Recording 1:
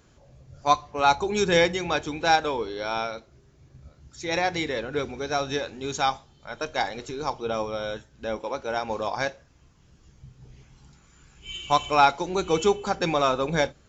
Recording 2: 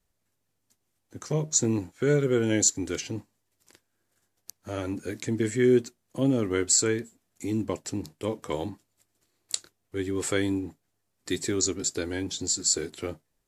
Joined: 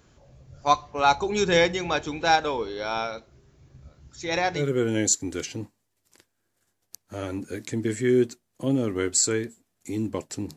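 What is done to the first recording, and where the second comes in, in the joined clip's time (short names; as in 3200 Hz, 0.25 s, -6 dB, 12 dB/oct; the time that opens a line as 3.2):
recording 1
4.59 switch to recording 2 from 2.14 s, crossfade 0.10 s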